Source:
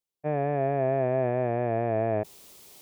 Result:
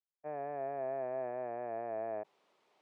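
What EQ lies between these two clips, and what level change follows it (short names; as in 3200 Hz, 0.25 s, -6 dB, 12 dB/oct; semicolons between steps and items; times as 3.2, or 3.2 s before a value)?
ladder band-pass 660 Hz, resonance 25%; bell 480 Hz -13 dB 1.8 oct; +9.0 dB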